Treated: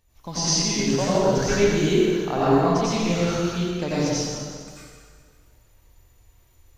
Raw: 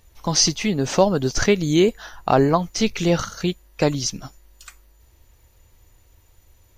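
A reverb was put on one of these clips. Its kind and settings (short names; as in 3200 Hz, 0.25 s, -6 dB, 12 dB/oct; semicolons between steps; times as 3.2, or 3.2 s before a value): plate-style reverb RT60 1.9 s, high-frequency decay 0.85×, pre-delay 75 ms, DRR -10 dB; gain -12 dB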